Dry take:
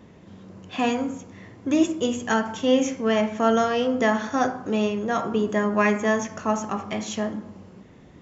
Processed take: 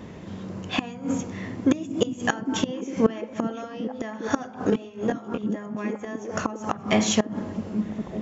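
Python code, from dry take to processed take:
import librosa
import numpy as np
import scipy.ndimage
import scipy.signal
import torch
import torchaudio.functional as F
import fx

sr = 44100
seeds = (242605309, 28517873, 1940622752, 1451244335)

y = fx.gate_flip(x, sr, shuts_db=-17.0, range_db=-24)
y = fx.echo_stepped(y, sr, ms=403, hz=160.0, octaves=0.7, feedback_pct=70, wet_db=-4.5)
y = fx.detune_double(y, sr, cents=15, at=(4.7, 5.43))
y = y * 10.0 ** (8.5 / 20.0)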